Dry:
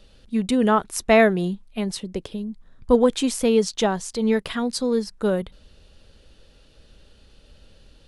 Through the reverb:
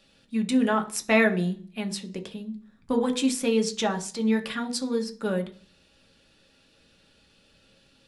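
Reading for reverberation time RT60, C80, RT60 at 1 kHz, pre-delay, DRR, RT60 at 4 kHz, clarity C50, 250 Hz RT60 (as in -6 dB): 0.40 s, 21.0 dB, 0.40 s, 3 ms, 5.0 dB, 0.50 s, 16.5 dB, 0.55 s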